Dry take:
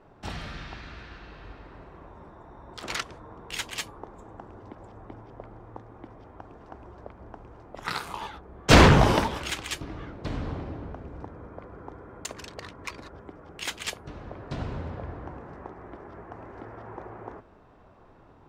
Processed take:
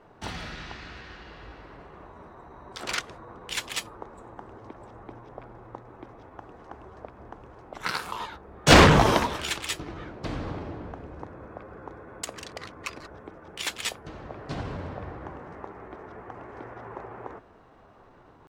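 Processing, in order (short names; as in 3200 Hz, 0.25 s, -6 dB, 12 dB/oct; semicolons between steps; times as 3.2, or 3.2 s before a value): low shelf 180 Hz -5 dB; pitch shift +1 st; gain +2 dB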